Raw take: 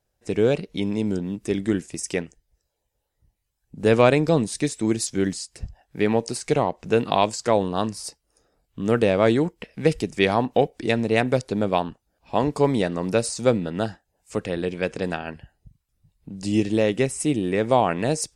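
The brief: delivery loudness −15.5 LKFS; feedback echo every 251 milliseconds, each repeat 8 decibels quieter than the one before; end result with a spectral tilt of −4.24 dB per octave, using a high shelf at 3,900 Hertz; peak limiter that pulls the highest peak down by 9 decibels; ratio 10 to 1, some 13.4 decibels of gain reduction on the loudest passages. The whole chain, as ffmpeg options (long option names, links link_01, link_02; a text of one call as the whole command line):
ffmpeg -i in.wav -af "highshelf=frequency=3900:gain=7.5,acompressor=threshold=-26dB:ratio=10,alimiter=limit=-20dB:level=0:latency=1,aecho=1:1:251|502|753|1004|1255:0.398|0.159|0.0637|0.0255|0.0102,volume=17dB" out.wav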